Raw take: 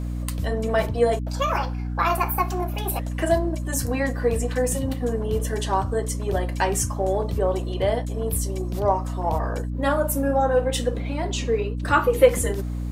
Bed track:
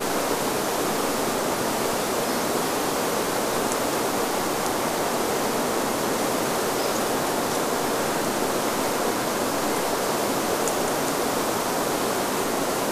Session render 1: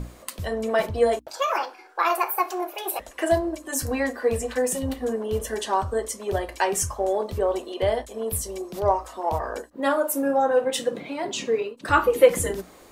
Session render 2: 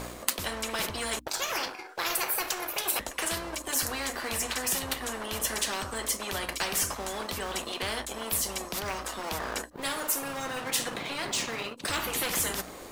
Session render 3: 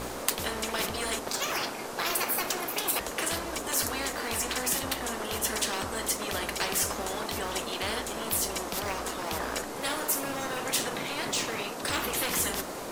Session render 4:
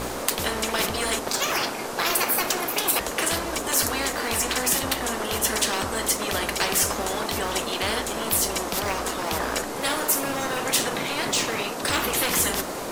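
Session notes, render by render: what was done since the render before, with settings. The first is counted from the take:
mains-hum notches 60/120/180/240/300 Hz
leveller curve on the samples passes 1; every bin compressed towards the loudest bin 4 to 1
mix in bed track −14 dB
level +6 dB; brickwall limiter −1 dBFS, peak gain reduction 3 dB

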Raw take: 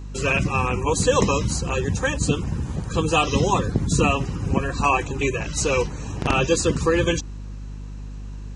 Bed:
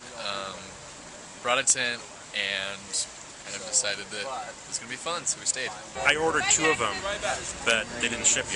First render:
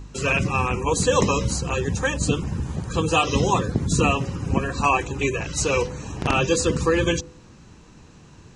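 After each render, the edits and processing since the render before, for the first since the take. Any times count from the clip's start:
hum removal 50 Hz, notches 12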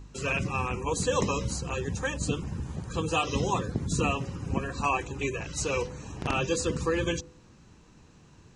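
level −7.5 dB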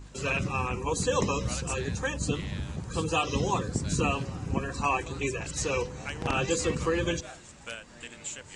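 mix in bed −16.5 dB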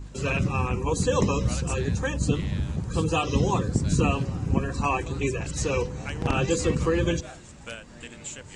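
low-shelf EQ 420 Hz +7.5 dB

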